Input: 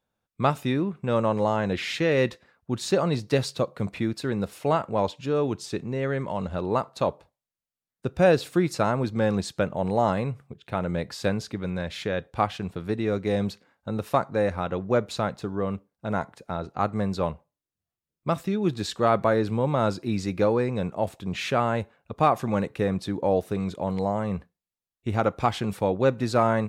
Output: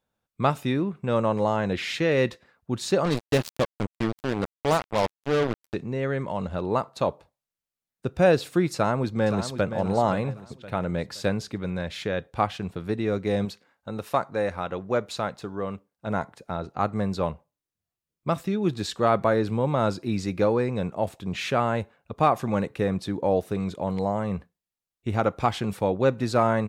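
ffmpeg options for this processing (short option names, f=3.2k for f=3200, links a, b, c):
-filter_complex "[0:a]asplit=3[a][b][c];[a]afade=t=out:st=3.04:d=0.02[d];[b]acrusher=bits=3:mix=0:aa=0.5,afade=t=in:st=3.04:d=0.02,afade=t=out:st=5.73:d=0.02[e];[c]afade=t=in:st=5.73:d=0.02[f];[d][e][f]amix=inputs=3:normalize=0,asplit=2[g][h];[h]afade=t=in:st=8.74:d=0.01,afade=t=out:st=9.77:d=0.01,aecho=0:1:520|1040|1560|2080:0.334965|0.117238|0.0410333|0.0143616[i];[g][i]amix=inputs=2:normalize=0,asettb=1/sr,asplit=3[j][k][l];[j]atrim=end=13.454[m];[k]atrim=start=13.45:end=16.07,asetpts=PTS-STARTPTS,afade=t=in:d=0.004:c=qsin,afade=t=out:st=2.616:d=0.004:c=qsin,lowshelf=f=370:g=-6[n];[l]atrim=start=16.066[o];[m][n]acrossfade=d=0.004:c1=hsin:c2=qsin[p];[p][o]acrossfade=d=0.004:c1=qsin:c2=hsin"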